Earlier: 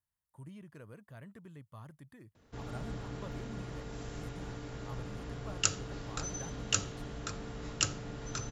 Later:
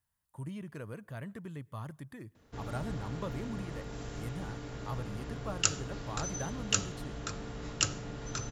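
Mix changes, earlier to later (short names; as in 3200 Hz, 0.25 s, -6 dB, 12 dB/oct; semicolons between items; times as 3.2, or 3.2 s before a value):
speech +7.5 dB; reverb: on, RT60 0.60 s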